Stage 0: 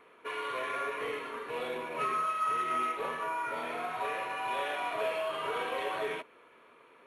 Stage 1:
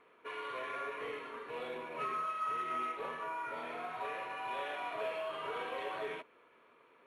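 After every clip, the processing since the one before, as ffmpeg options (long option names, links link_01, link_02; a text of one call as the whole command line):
ffmpeg -i in.wav -af "highshelf=frequency=8800:gain=-11,volume=-5.5dB" out.wav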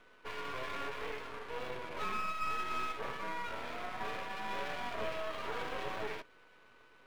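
ffmpeg -i in.wav -filter_complex "[0:a]acrossover=split=5000[link_01][link_02];[link_02]aeval=exprs='(mod(2000*val(0)+1,2)-1)/2000':channel_layout=same[link_03];[link_01][link_03]amix=inputs=2:normalize=0,aeval=exprs='val(0)+0.000631*sin(2*PI*1500*n/s)':channel_layout=same,aeval=exprs='max(val(0),0)':channel_layout=same,volume=4.5dB" out.wav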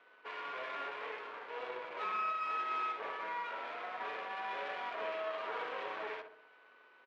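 ffmpeg -i in.wav -filter_complex "[0:a]highpass=460,lowpass=3100,asplit=2[link_01][link_02];[link_02]adelay=64,lowpass=frequency=1300:poles=1,volume=-5.5dB,asplit=2[link_03][link_04];[link_04]adelay=64,lowpass=frequency=1300:poles=1,volume=0.54,asplit=2[link_05][link_06];[link_06]adelay=64,lowpass=frequency=1300:poles=1,volume=0.54,asplit=2[link_07][link_08];[link_08]adelay=64,lowpass=frequency=1300:poles=1,volume=0.54,asplit=2[link_09][link_10];[link_10]adelay=64,lowpass=frequency=1300:poles=1,volume=0.54,asplit=2[link_11][link_12];[link_12]adelay=64,lowpass=frequency=1300:poles=1,volume=0.54,asplit=2[link_13][link_14];[link_14]adelay=64,lowpass=frequency=1300:poles=1,volume=0.54[link_15];[link_03][link_05][link_07][link_09][link_11][link_13][link_15]amix=inputs=7:normalize=0[link_16];[link_01][link_16]amix=inputs=2:normalize=0" out.wav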